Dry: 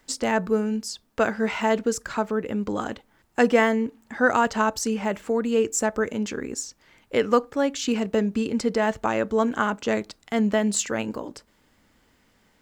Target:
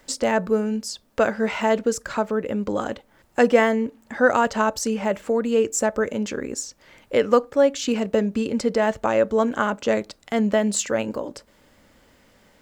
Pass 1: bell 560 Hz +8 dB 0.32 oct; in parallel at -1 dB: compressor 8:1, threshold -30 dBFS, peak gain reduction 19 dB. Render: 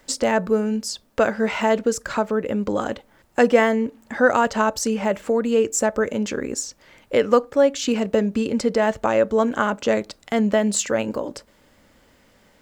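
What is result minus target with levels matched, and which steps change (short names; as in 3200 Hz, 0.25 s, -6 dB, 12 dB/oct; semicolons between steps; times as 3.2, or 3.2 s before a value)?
compressor: peak gain reduction -10.5 dB
change: compressor 8:1, threshold -42 dBFS, peak gain reduction 29.5 dB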